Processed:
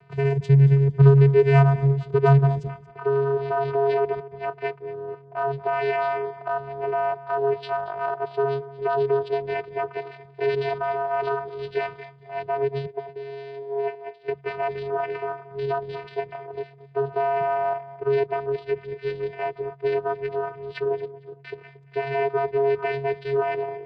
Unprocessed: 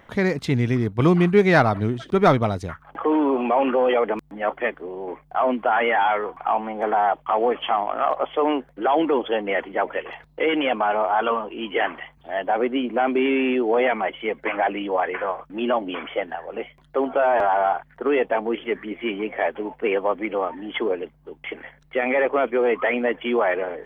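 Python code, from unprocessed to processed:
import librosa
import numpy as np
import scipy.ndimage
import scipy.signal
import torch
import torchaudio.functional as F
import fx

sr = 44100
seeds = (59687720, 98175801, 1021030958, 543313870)

y = fx.vowel_filter(x, sr, vowel='e', at=(12.85, 14.28))
y = fx.vocoder(y, sr, bands=8, carrier='square', carrier_hz=138.0)
y = fx.echo_feedback(y, sr, ms=229, feedback_pct=26, wet_db=-18.0)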